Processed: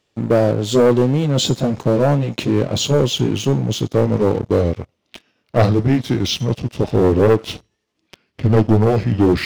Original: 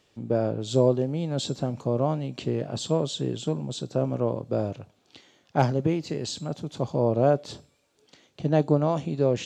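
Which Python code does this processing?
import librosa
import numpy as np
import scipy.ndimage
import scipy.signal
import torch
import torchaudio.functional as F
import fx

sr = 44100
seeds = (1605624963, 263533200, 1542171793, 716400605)

y = fx.pitch_glide(x, sr, semitones=-6.0, runs='starting unshifted')
y = fx.leveller(y, sr, passes=3)
y = F.gain(torch.from_numpy(y), 2.5).numpy()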